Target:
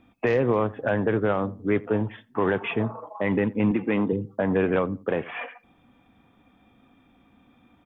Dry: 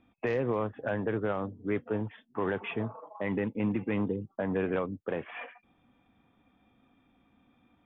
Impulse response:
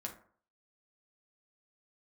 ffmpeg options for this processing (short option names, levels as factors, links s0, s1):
-filter_complex "[0:a]asettb=1/sr,asplit=3[s0][s1][s2];[s0]atrim=end=3.714[s3];[s1]atrim=start=3.71:end=4.13,asetpts=PTS-STARTPTS,afade=t=in:d=0.004:c=qsin,afade=t=out:st=0.416:d=0.004:c=qsin,highpass=170[s4];[s2]atrim=start=4.126[s5];[s3][s4]acrossfade=d=0.004:c1=hsin:c2=qsin[s6];[s6][s5]acrossfade=d=0.004:c1=qsin:c2=hsin,asplit=2[s7][s8];[s8]adelay=87,lowpass=f=1400:p=1,volume=0.1,asplit=2[s9][s10];[s10]adelay=87,lowpass=f=1400:p=1,volume=0.27[s11];[s7][s9][s11]amix=inputs=3:normalize=0,volume=2.37"